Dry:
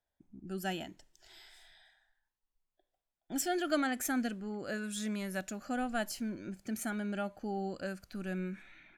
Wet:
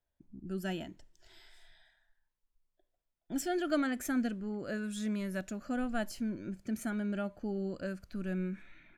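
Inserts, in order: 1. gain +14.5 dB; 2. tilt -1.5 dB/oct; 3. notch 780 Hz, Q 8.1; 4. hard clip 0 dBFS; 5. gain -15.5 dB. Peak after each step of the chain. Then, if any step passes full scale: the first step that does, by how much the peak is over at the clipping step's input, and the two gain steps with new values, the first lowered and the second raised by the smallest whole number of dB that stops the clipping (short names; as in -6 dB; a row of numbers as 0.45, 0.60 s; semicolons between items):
-4.5, -4.0, -4.0, -4.0, -19.5 dBFS; no overload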